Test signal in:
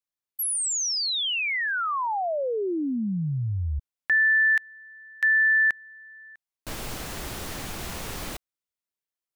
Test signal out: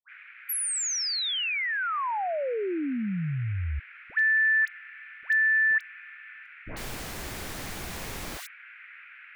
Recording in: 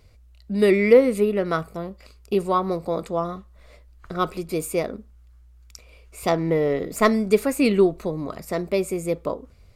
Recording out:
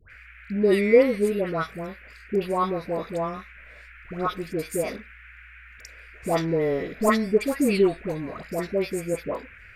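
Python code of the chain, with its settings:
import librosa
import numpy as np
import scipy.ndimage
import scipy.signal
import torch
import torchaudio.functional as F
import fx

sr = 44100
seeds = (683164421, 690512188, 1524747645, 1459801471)

y = fx.dmg_noise_band(x, sr, seeds[0], low_hz=1400.0, high_hz=2500.0, level_db=-46.0)
y = fx.dispersion(y, sr, late='highs', ms=102.0, hz=1100.0)
y = y * librosa.db_to_amplitude(-2.5)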